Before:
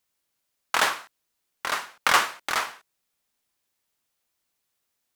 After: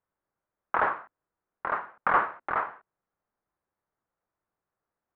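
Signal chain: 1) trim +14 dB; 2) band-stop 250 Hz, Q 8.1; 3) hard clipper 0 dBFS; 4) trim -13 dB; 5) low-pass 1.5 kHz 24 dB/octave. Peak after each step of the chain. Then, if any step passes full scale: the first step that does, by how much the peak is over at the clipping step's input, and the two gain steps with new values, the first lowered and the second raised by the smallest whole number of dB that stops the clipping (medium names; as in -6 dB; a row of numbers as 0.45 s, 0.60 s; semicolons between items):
+9.5 dBFS, +9.5 dBFS, 0.0 dBFS, -13.0 dBFS, -12.0 dBFS; step 1, 9.5 dB; step 1 +4 dB, step 4 -3 dB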